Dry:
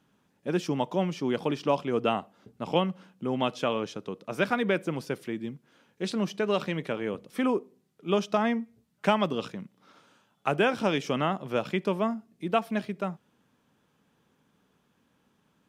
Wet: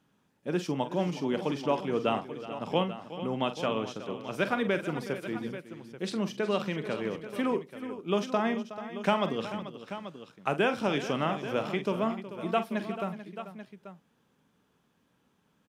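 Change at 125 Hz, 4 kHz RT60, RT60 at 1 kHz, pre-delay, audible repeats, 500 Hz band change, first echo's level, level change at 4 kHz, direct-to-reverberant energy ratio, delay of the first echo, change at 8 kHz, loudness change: -2.0 dB, none, none, none, 4, -1.5 dB, -11.0 dB, -1.5 dB, none, 45 ms, -1.5 dB, -2.0 dB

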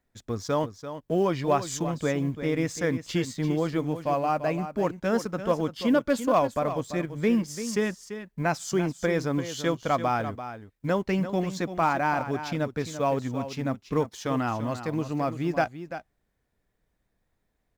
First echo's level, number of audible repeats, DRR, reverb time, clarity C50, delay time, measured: -11.0 dB, 1, none, none, none, 0.34 s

